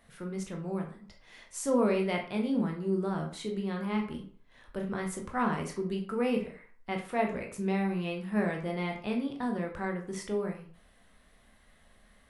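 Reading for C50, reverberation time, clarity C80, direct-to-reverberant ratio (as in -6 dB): 8.0 dB, 0.50 s, 12.0 dB, 1.5 dB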